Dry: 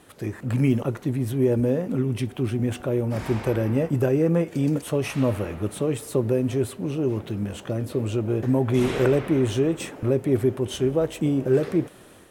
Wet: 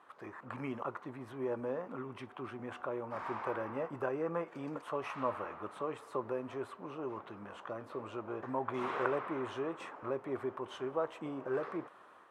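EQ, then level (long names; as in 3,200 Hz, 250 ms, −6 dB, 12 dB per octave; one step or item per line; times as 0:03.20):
resonant band-pass 1,100 Hz, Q 3.2
+2.5 dB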